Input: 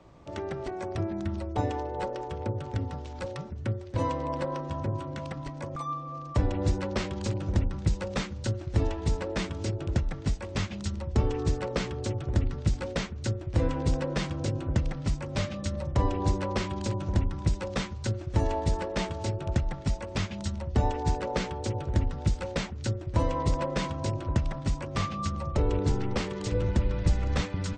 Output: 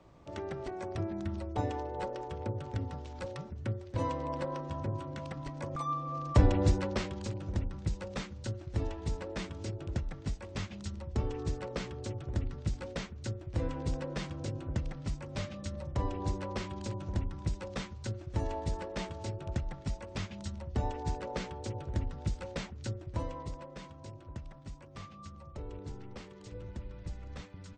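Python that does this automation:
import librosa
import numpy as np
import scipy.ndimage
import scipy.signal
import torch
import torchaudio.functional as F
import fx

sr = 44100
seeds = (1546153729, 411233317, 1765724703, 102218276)

y = fx.gain(x, sr, db=fx.line((5.28, -4.5), (6.44, 3.0), (7.31, -7.5), (23.04, -7.5), (23.64, -17.0)))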